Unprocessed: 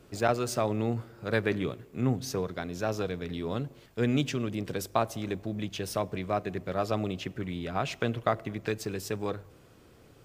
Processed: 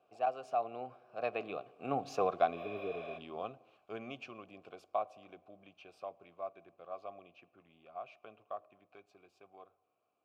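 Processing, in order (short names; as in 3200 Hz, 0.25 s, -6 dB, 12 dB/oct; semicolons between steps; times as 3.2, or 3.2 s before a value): Doppler pass-by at 2.37, 26 m/s, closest 9.7 m; spectral repair 2.58–3.15, 480–12000 Hz before; vowel filter a; gain +15 dB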